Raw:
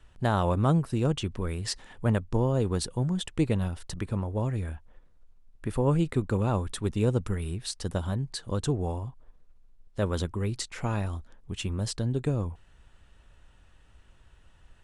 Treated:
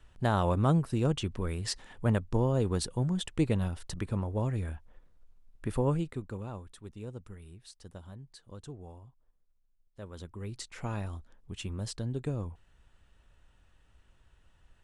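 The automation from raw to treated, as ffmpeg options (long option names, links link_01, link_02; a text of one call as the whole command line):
ffmpeg -i in.wav -af "volume=9dB,afade=type=out:start_time=5.79:duration=0.3:silence=0.398107,afade=type=out:start_time=6.09:duration=0.61:silence=0.446684,afade=type=in:start_time=10.12:duration=0.68:silence=0.281838" out.wav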